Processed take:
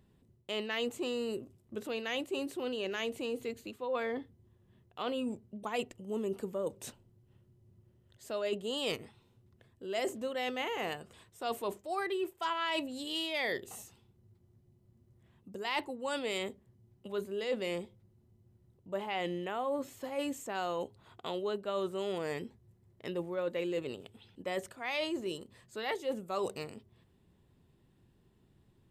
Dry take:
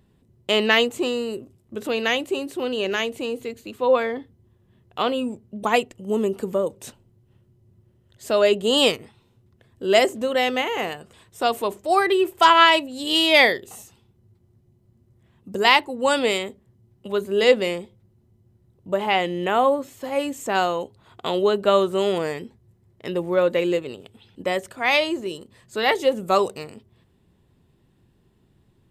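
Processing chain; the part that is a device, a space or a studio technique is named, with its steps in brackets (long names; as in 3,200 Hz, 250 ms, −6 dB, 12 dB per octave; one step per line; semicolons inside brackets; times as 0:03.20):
compression on the reversed sound (reversed playback; downward compressor 6 to 1, threshold −26 dBFS, peak gain reduction 16 dB; reversed playback)
level −6 dB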